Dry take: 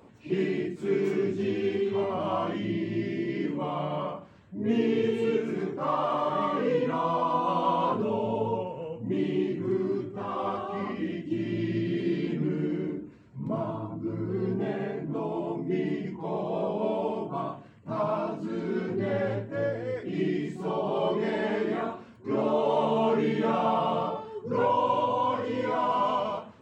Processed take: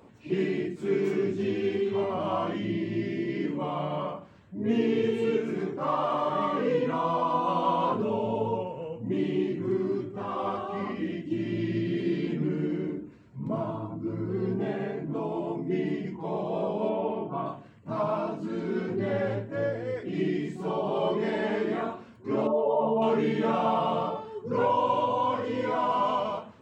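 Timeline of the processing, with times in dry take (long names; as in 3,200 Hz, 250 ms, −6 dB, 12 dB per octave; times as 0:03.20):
0:16.89–0:17.46: low-pass filter 3,200 Hz 24 dB per octave
0:22.47–0:23.02: expanding power law on the bin magnitudes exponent 1.6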